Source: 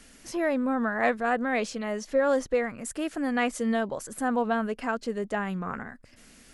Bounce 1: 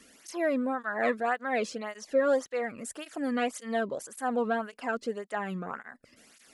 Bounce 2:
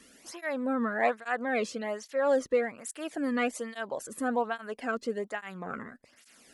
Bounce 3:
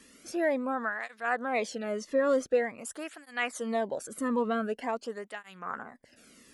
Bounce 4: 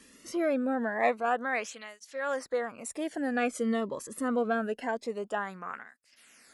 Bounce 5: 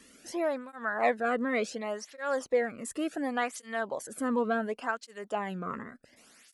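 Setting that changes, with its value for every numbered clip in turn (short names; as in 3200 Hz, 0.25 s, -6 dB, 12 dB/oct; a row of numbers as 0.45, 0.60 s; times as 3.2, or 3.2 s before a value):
tape flanging out of phase, nulls at: 1.8, 1.2, 0.46, 0.25, 0.69 Hz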